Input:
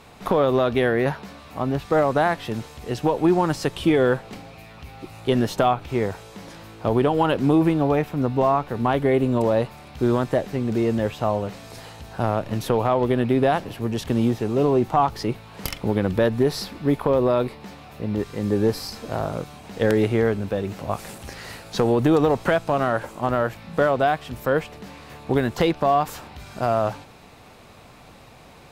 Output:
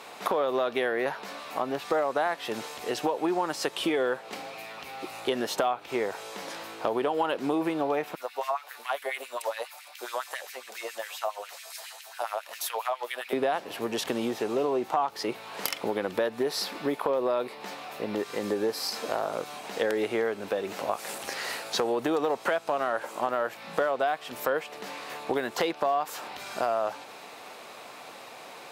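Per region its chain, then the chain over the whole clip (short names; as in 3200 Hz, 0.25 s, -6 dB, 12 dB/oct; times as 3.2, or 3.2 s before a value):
8.15–13.33 pre-emphasis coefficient 0.8 + LFO high-pass sine 7.3 Hz 570–2300 Hz
whole clip: HPF 440 Hz 12 dB/oct; compressor 3:1, threshold -32 dBFS; gain +5 dB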